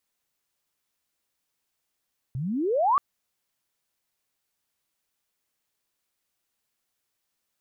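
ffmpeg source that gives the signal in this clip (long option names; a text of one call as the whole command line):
ffmpeg -f lavfi -i "aevalsrc='pow(10,(-28+11*t/0.63)/20)*sin(2*PI*120*0.63/log(1200/120)*(exp(log(1200/120)*t/0.63)-1))':duration=0.63:sample_rate=44100" out.wav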